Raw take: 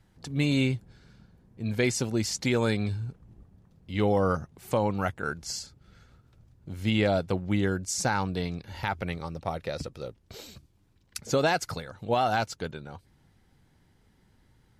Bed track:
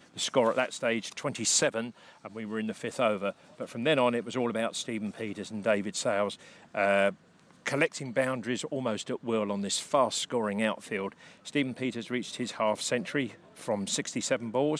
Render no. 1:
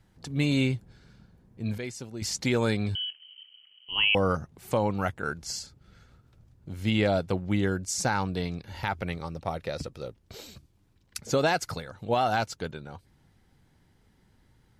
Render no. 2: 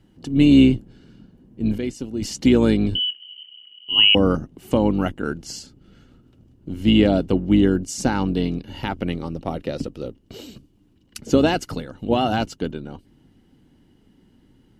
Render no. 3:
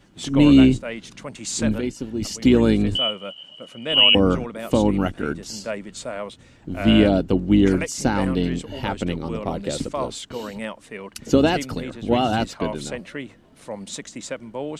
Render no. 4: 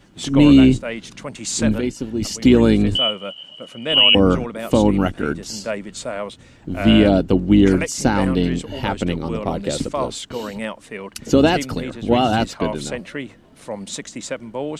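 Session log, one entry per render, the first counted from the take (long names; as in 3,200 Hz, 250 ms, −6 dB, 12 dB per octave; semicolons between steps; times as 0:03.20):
0:01.78–0:02.22: clip gain −11 dB; 0:02.95–0:04.15: voice inversion scrambler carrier 3,100 Hz
sub-octave generator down 2 octaves, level −3 dB; hollow resonant body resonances 270/2,900 Hz, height 15 dB, ringing for 20 ms
mix in bed track −2.5 dB
level +3.5 dB; brickwall limiter −3 dBFS, peak gain reduction 3 dB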